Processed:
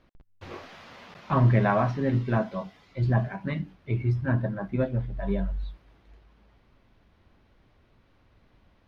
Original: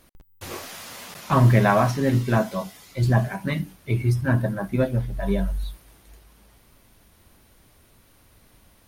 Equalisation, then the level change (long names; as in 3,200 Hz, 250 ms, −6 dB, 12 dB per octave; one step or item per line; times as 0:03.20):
high-frequency loss of the air 250 metres
−4.0 dB